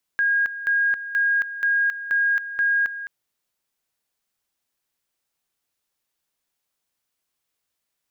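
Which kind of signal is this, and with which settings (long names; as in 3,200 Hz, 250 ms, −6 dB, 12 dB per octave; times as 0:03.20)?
tone at two levels in turn 1,630 Hz −17 dBFS, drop 12.5 dB, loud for 0.27 s, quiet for 0.21 s, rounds 6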